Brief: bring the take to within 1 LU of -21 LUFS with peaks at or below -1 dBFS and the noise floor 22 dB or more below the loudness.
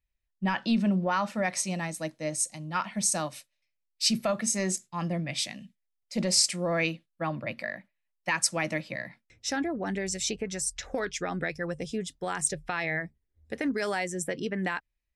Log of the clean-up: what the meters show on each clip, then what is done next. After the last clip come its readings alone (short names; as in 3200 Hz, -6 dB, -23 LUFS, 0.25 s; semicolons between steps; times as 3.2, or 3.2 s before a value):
loudness -30.0 LUFS; peak -9.0 dBFS; loudness target -21.0 LUFS
-> gain +9 dB; limiter -1 dBFS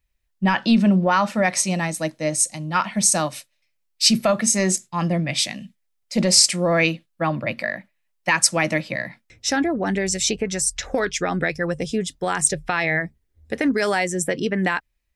loudness -21.0 LUFS; peak -1.0 dBFS; noise floor -71 dBFS